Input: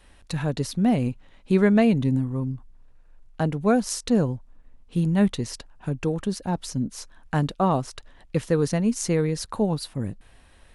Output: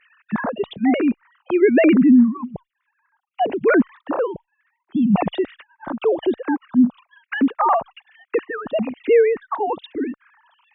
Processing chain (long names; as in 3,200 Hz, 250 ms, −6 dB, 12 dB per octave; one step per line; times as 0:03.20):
three sine waves on the formant tracks
in parallel at +1 dB: brickwall limiter −18 dBFS, peak gain reduction 9 dB
on the sum: frequency shifter mixed with the dry sound −1.1 Hz
level +3.5 dB